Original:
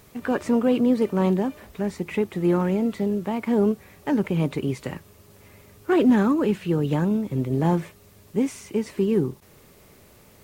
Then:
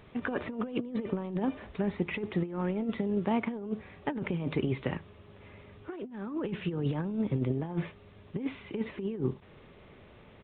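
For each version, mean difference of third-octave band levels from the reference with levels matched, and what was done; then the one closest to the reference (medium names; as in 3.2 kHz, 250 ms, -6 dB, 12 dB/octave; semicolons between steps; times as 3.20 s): 9.0 dB: resampled via 8 kHz; delay 75 ms -23.5 dB; compressor with a negative ratio -25 dBFS, ratio -0.5; trim -5.5 dB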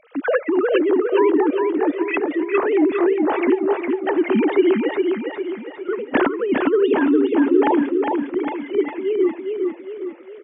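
13.0 dB: formants replaced by sine waves; compressor with a negative ratio -24 dBFS, ratio -0.5; feedback delay 407 ms, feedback 48%, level -4 dB; trim +6.5 dB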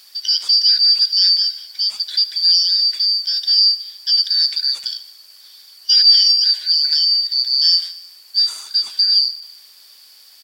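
17.0 dB: four frequency bands reordered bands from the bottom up 4321; high-pass 1.1 kHz 6 dB/octave; feedback delay 74 ms, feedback 60%, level -16.5 dB; trim +6.5 dB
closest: first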